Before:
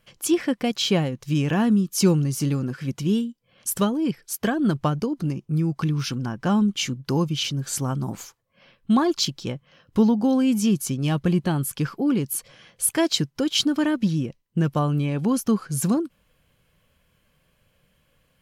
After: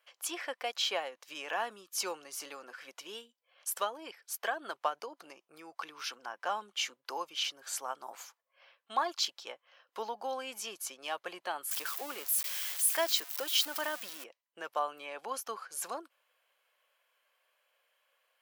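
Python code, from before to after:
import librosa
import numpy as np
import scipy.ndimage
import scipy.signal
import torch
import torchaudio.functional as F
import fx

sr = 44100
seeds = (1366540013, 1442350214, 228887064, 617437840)

y = fx.crossing_spikes(x, sr, level_db=-20.5, at=(11.71, 14.24))
y = scipy.signal.sosfilt(scipy.signal.butter(4, 620.0, 'highpass', fs=sr, output='sos'), y)
y = fx.peak_eq(y, sr, hz=8300.0, db=-5.5, octaves=2.3)
y = F.gain(torch.from_numpy(y), -4.0).numpy()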